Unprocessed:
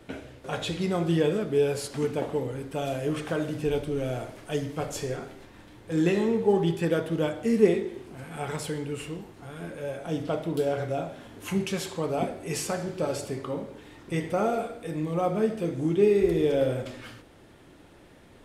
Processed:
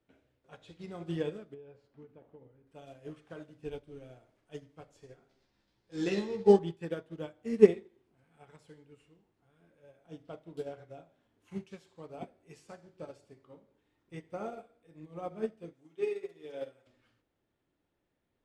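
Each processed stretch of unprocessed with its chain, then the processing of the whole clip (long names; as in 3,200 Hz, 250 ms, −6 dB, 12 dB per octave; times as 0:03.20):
0:01.54–0:02.67: head-to-tape spacing loss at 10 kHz 28 dB + downward compressor 10 to 1, threshold −26 dBFS
0:05.29–0:06.59: parametric band 4,900 Hz +13 dB 0.84 octaves + double-tracking delay 15 ms −4 dB
0:15.73–0:16.87: high-pass filter 820 Hz 6 dB per octave + comb filter 7.2 ms, depth 64%
whole clip: Bessel low-pass filter 7,200 Hz, order 2; expander for the loud parts 2.5 to 1, over −34 dBFS; level +2 dB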